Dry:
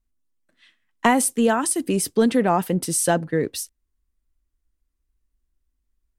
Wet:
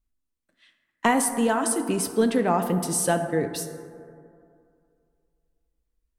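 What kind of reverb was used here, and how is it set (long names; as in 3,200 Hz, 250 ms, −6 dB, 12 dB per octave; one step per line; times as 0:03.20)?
dense smooth reverb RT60 2.4 s, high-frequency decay 0.3×, DRR 7 dB
level −3.5 dB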